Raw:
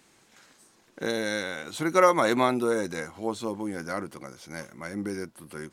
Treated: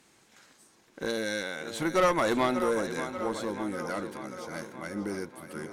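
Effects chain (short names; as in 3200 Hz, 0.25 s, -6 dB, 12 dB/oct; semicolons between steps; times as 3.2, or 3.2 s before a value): tape echo 0.587 s, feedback 66%, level -11 dB, low-pass 5900 Hz; tube stage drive 17 dB, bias 0.4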